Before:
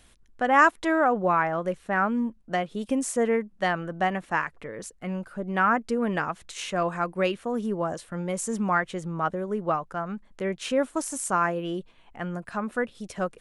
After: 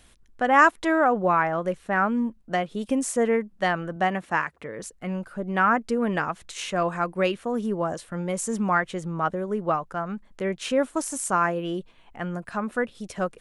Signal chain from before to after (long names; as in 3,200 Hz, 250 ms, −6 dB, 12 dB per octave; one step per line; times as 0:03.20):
0:03.96–0:04.80: high-pass filter 60 Hz
level +1.5 dB